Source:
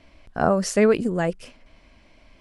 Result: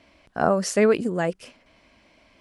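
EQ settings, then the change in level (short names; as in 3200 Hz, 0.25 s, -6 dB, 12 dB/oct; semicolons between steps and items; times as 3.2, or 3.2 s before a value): HPF 170 Hz 6 dB/oct; 0.0 dB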